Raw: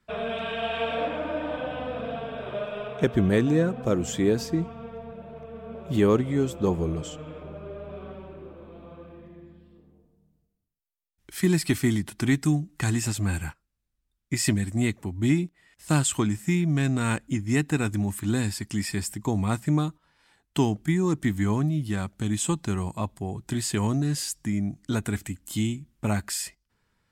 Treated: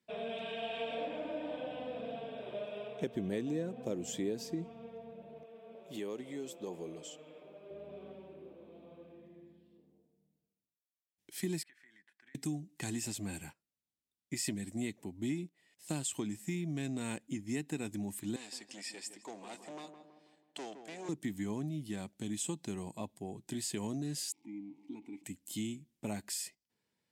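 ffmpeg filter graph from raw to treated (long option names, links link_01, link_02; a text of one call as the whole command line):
ffmpeg -i in.wav -filter_complex "[0:a]asettb=1/sr,asplit=3[link_01][link_02][link_03];[link_01]atrim=end=5.434[link_04];[link_02]atrim=start=5.43:end=7.71,asetpts=PTS-STARTPTS,afade=type=in:duration=0.004:curve=qsin,afade=type=out:start_time=2.276:duration=0.004:curve=qsin,highpass=frequency=540:poles=1,acompressor=threshold=-28dB:ratio=3:attack=3.2:release=140:knee=1:detection=peak[link_05];[link_03]atrim=start=7.706[link_06];[link_04][link_05]acrossfade=duration=0.004:curve1=hsin:curve2=qsin[link_07];[link_07][link_06]acrossfade=duration=0.004:curve1=qsin:curve2=hsin,asettb=1/sr,asplit=3[link_08][link_09][link_10];[link_08]atrim=end=11.634[link_11];[link_09]atrim=start=11.63:end=12.35,asetpts=PTS-STARTPTS,afade=type=in:duration=0.004:curve=qsin,afade=type=out:start_time=0.716:duration=0.004:curve=qsin,bandpass=frequency=1700:width_type=q:width=7.5,acompressor=threshold=-46dB:ratio=12:attack=3.2:release=140:knee=1:detection=peak[link_12];[link_10]atrim=start=12.346[link_13];[link_11][link_12]acrossfade=duration=0.004:curve1=hsin:curve2=qsin[link_14];[link_14][link_13]acrossfade=duration=0.004:curve1=qsin:curve2=hsin,asettb=1/sr,asplit=3[link_15][link_16][link_17];[link_15]atrim=end=18.364[link_18];[link_16]atrim=start=18.36:end=21.09,asetpts=PTS-STARTPTS,afade=type=in:duration=0.004:curve=qsin,afade=type=out:start_time=2.726:duration=0.004:curve=qsin,asoftclip=type=hard:threshold=-24dB,highpass=530,lowpass=7300,asplit=2[link_19][link_20];[link_20]adelay=163,lowpass=frequency=1400:poles=1,volume=-8dB,asplit=2[link_21][link_22];[link_22]adelay=163,lowpass=frequency=1400:poles=1,volume=0.54,asplit=2[link_23][link_24];[link_24]adelay=163,lowpass=frequency=1400:poles=1,volume=0.54,asplit=2[link_25][link_26];[link_26]adelay=163,lowpass=frequency=1400:poles=1,volume=0.54,asplit=2[link_27][link_28];[link_28]adelay=163,lowpass=frequency=1400:poles=1,volume=0.54,asplit=2[link_29][link_30];[link_30]adelay=163,lowpass=frequency=1400:poles=1,volume=0.54[link_31];[link_19][link_21][link_23][link_25][link_27][link_29][link_31]amix=inputs=7:normalize=0,atrim=end_sample=120393[link_32];[link_17]atrim=start=21.086[link_33];[link_18][link_32]acrossfade=duration=0.004:curve1=hsin:curve2=qsin[link_34];[link_34][link_33]acrossfade=duration=0.004:curve1=qsin:curve2=hsin,asettb=1/sr,asplit=3[link_35][link_36][link_37];[link_35]atrim=end=24.324[link_38];[link_36]atrim=start=24.32:end=25.24,asetpts=PTS-STARTPTS,afade=type=in:duration=0.004:curve=qsin,afade=type=out:start_time=0.916:duration=0.004:curve=qsin,aeval=exprs='val(0)+0.5*0.015*sgn(val(0))':channel_layout=same,asplit=3[link_39][link_40][link_41];[link_39]bandpass=frequency=300:width_type=q:width=8,volume=0dB[link_42];[link_40]bandpass=frequency=870:width_type=q:width=8,volume=-6dB[link_43];[link_41]bandpass=frequency=2240:width_type=q:width=8,volume=-9dB[link_44];[link_42][link_43][link_44]amix=inputs=3:normalize=0[link_45];[link_37]atrim=start=25.236[link_46];[link_38][link_45]acrossfade=duration=0.004:curve1=hsin:curve2=qsin[link_47];[link_47][link_46]acrossfade=duration=0.004:curve1=qsin:curve2=hsin,highpass=200,equalizer=frequency=1300:width_type=o:width=0.85:gain=-12.5,acompressor=threshold=-27dB:ratio=2.5,volume=-7dB" out.wav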